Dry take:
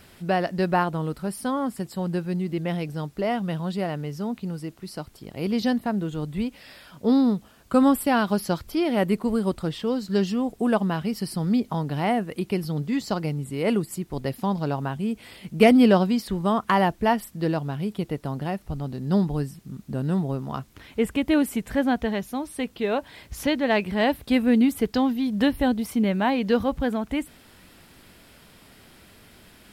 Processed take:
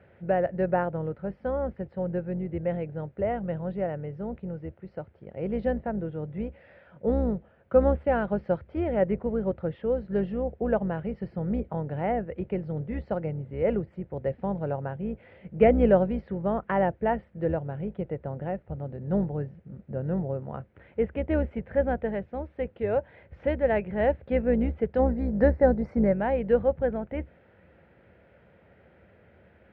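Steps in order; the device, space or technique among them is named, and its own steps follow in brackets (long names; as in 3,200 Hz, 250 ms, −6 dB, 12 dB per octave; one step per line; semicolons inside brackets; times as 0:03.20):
0:24.99–0:26.13: drawn EQ curve 130 Hz 0 dB, 230 Hz +5 dB, 2,000 Hz +3 dB, 3,200 Hz −14 dB, 4,600 Hz +13 dB
sub-octave bass pedal (sub-octave generator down 2 octaves, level −4 dB; loudspeaker in its box 71–2,000 Hz, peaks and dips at 71 Hz +6 dB, 270 Hz −8 dB, 530 Hz +10 dB, 1,100 Hz −10 dB)
level −4.5 dB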